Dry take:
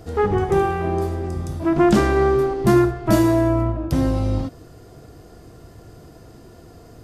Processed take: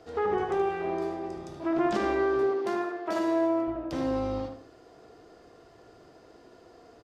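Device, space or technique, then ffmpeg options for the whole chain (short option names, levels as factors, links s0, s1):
DJ mixer with the lows and highs turned down: -filter_complex "[0:a]acrossover=split=300 6300:gain=0.141 1 0.126[s0][s1][s2];[s0][s1][s2]amix=inputs=3:normalize=0,alimiter=limit=0.188:level=0:latency=1:release=55,asettb=1/sr,asplit=3[s3][s4][s5];[s3]atrim=end=2.434[s6];[s4]atrim=start=2.43:end=3.68,asetpts=PTS-STARTPTS,afade=t=in:d=0.004:c=qsin,afade=t=out:st=1.246:d=0.004:c=qsin,highpass=290[s7];[s5]atrim=start=3.676[s8];[s6][s7]acrossfade=d=0.004:c1=hsin:c2=qsin[s9];[s9][s8]acrossfade=d=0.004:c1=qsin:c2=hsin,asplit=2[s10][s11];[s11]adelay=76,lowpass=f=1900:p=1,volume=0.668,asplit=2[s12][s13];[s13]adelay=76,lowpass=f=1900:p=1,volume=0.33,asplit=2[s14][s15];[s15]adelay=76,lowpass=f=1900:p=1,volume=0.33,asplit=2[s16][s17];[s17]adelay=76,lowpass=f=1900:p=1,volume=0.33[s18];[s10][s12][s14][s16][s18]amix=inputs=5:normalize=0,volume=0.501"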